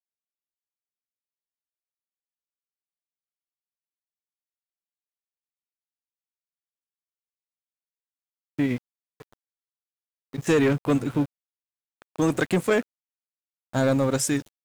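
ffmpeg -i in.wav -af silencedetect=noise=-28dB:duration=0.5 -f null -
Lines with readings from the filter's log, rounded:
silence_start: 0.00
silence_end: 8.59 | silence_duration: 8.59
silence_start: 8.77
silence_end: 10.34 | silence_duration: 1.58
silence_start: 11.25
silence_end: 12.19 | silence_duration: 0.94
silence_start: 12.81
silence_end: 13.75 | silence_duration: 0.94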